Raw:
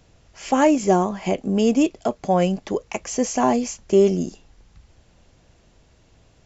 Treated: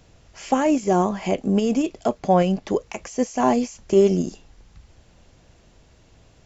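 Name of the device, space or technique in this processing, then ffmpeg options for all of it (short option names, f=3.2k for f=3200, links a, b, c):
de-esser from a sidechain: -filter_complex "[0:a]asplit=2[a][b];[b]highpass=5.1k,apad=whole_len=284626[c];[a][c]sidechaincompress=threshold=-42dB:ratio=5:attack=4.5:release=48,asettb=1/sr,asplit=3[d][e][f];[d]atrim=end=2.194[g];[e]atrim=start=2.19:end=2.67,asetpts=PTS-STARTPTS,afade=t=in:d=0.004:c=qsin,afade=t=out:st=0.476:d=0.004:c=qsin,lowpass=6.2k[h];[f]atrim=start=2.666[i];[g][h]acrossfade=d=0.004:c1=hsin:c2=qsin[j];[j][i]acrossfade=d=0.004:c1=qsin:c2=hsin,volume=2dB"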